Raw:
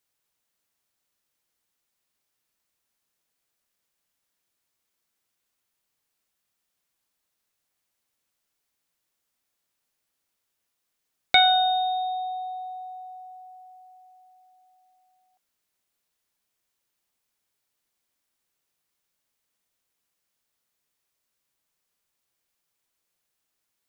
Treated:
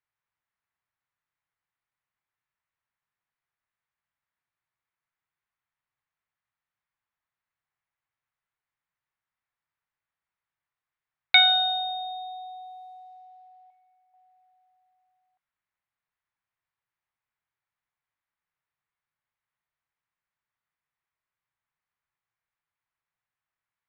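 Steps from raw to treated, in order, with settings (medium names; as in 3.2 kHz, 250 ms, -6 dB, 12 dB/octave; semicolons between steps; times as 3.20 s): 13.70–14.14 s: companding laws mixed up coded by A; level-controlled noise filter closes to 1.4 kHz, open at -35 dBFS; graphic EQ 125/250/500/1000/2000/4000 Hz +7/-8/-6/+5/+9/+8 dB; trim -7.5 dB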